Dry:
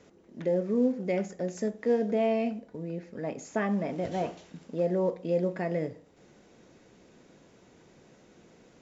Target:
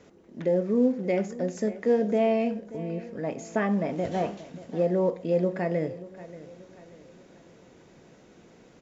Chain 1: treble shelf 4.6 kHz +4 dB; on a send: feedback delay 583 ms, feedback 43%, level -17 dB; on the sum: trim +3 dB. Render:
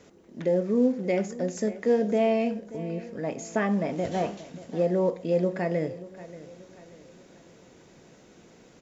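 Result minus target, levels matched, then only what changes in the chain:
8 kHz band +5.0 dB
change: treble shelf 4.6 kHz -3 dB

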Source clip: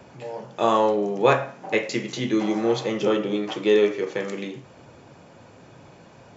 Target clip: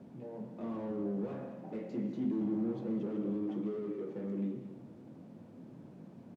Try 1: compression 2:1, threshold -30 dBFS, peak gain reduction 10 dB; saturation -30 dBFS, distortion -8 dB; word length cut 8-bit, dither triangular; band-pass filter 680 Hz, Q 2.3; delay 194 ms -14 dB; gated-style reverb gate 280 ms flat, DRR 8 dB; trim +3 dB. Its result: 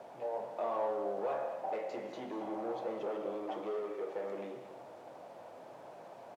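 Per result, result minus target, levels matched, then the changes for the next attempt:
250 Hz band -10.0 dB; compression: peak gain reduction +5.5 dB
change: band-pass filter 220 Hz, Q 2.3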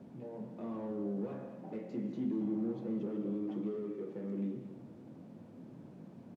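compression: peak gain reduction +5.5 dB
change: compression 2:1, threshold -19 dBFS, peak gain reduction 4.5 dB

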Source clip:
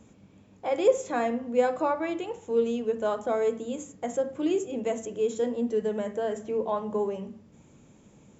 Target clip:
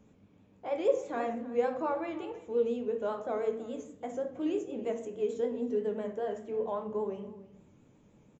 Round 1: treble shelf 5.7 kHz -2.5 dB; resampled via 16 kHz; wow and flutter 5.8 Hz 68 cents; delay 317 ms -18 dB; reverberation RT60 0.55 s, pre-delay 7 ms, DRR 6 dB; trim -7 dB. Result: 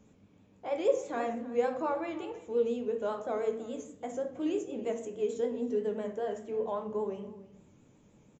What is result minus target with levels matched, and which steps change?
8 kHz band +5.0 dB
change: treble shelf 5.7 kHz -11 dB

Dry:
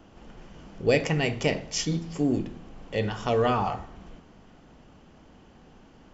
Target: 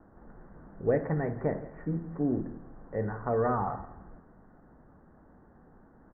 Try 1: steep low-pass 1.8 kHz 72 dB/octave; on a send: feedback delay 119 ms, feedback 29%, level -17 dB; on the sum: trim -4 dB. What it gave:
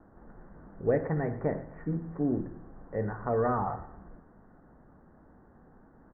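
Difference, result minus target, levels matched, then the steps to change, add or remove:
echo 48 ms early
change: feedback delay 167 ms, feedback 29%, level -17 dB

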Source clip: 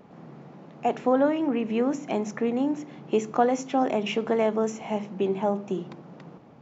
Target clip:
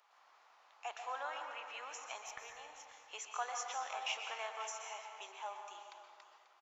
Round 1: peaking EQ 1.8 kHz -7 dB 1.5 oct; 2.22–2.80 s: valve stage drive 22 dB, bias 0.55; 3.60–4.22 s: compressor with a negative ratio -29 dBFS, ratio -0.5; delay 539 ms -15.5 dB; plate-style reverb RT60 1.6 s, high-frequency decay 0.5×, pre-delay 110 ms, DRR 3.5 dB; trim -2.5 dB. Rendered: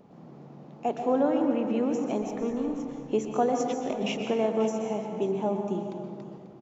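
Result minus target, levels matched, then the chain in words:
1 kHz band -5.5 dB
high-pass 1.1 kHz 24 dB/octave; peaking EQ 1.8 kHz -7 dB 1.5 oct; 2.22–2.80 s: valve stage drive 22 dB, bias 0.55; 3.60–4.22 s: compressor with a negative ratio -29 dBFS, ratio -0.5; delay 539 ms -15.5 dB; plate-style reverb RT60 1.6 s, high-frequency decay 0.5×, pre-delay 110 ms, DRR 3.5 dB; trim -2.5 dB

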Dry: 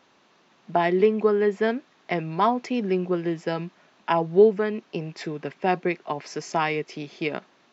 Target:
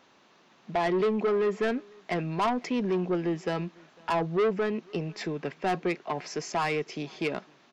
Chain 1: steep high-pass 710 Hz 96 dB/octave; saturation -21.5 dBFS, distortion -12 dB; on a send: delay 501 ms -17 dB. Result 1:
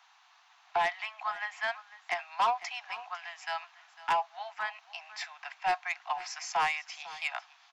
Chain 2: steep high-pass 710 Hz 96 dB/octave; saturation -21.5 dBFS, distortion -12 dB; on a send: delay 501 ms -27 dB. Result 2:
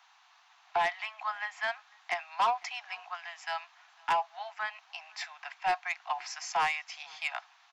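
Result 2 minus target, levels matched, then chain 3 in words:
1 kHz band +5.5 dB
saturation -21.5 dBFS, distortion -7 dB; on a send: delay 501 ms -27 dB

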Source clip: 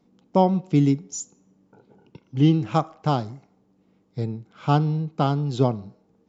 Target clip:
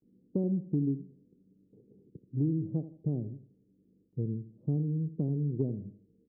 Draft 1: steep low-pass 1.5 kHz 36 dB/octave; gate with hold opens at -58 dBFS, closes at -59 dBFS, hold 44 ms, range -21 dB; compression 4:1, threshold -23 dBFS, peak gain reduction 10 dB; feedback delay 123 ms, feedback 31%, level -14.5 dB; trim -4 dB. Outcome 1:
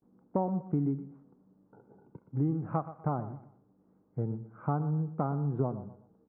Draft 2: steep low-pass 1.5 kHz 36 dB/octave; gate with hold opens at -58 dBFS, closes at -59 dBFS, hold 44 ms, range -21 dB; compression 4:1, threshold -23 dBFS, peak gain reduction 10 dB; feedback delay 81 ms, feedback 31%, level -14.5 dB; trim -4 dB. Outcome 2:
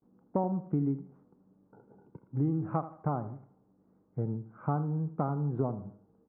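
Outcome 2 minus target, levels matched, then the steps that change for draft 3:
500 Hz band +3.0 dB
change: steep low-pass 450 Hz 36 dB/octave

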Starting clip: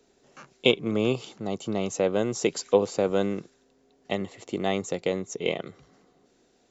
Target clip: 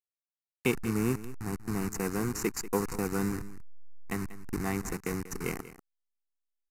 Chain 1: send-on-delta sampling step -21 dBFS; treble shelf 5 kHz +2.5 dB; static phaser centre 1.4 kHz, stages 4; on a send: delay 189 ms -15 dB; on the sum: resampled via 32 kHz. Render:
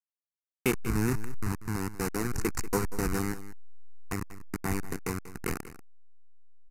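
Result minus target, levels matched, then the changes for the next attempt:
send-on-delta sampling: distortion +8 dB
change: send-on-delta sampling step -28.5 dBFS

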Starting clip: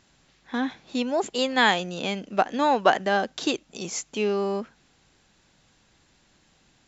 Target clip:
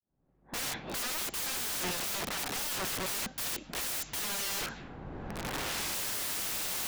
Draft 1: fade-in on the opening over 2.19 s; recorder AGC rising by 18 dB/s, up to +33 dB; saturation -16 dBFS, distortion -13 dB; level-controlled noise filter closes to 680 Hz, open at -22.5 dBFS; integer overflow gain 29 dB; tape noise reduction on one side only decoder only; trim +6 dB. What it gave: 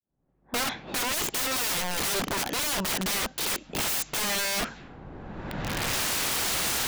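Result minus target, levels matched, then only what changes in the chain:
integer overflow: distortion -6 dB
change: integer overflow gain 36 dB

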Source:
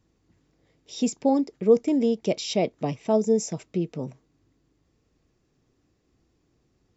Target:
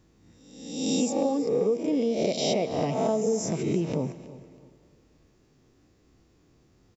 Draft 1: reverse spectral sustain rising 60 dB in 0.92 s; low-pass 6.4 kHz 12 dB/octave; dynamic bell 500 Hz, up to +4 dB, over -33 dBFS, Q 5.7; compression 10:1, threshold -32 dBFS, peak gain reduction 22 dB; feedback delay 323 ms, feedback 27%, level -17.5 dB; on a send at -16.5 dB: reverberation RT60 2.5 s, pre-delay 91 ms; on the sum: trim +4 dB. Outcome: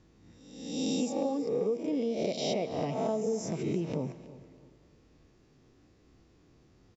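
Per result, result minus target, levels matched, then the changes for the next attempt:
compression: peak gain reduction +5.5 dB; 8 kHz band -3.0 dB
change: compression 10:1, threshold -26 dBFS, peak gain reduction 16.5 dB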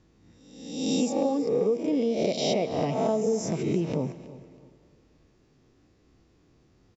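8 kHz band -3.0 dB
remove: low-pass 6.4 kHz 12 dB/octave

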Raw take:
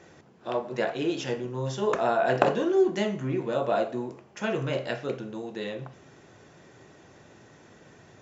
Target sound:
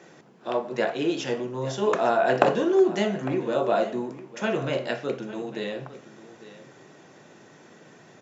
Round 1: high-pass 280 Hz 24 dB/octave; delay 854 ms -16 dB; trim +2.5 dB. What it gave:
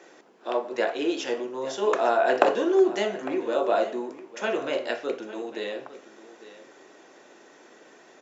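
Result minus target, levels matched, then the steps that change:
125 Hz band -17.0 dB
change: high-pass 140 Hz 24 dB/octave

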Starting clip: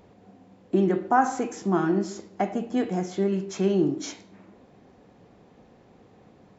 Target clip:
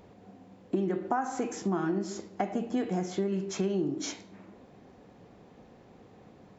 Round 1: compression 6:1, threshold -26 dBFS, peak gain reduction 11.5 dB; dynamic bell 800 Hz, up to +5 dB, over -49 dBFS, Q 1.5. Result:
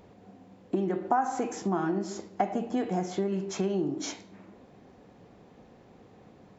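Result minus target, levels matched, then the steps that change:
1 kHz band +3.0 dB
remove: dynamic bell 800 Hz, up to +5 dB, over -49 dBFS, Q 1.5

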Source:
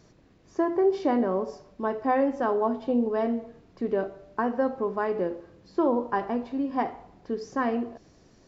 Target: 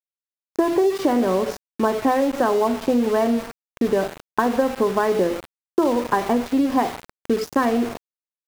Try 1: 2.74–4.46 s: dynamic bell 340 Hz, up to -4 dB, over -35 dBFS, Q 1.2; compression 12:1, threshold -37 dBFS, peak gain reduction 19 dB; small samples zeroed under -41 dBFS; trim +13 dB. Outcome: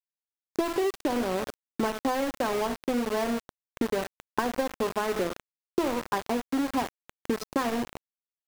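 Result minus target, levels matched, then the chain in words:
compression: peak gain reduction +8 dB
2.74–4.46 s: dynamic bell 340 Hz, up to -4 dB, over -35 dBFS, Q 1.2; compression 12:1, threshold -28 dBFS, peak gain reduction 11 dB; small samples zeroed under -41 dBFS; trim +13 dB

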